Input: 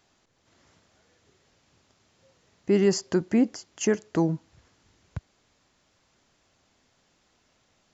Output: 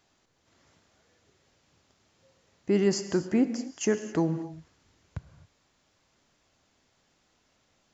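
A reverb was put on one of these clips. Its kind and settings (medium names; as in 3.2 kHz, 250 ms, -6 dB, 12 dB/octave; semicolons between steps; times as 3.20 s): gated-style reverb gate 290 ms flat, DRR 10 dB; trim -2.5 dB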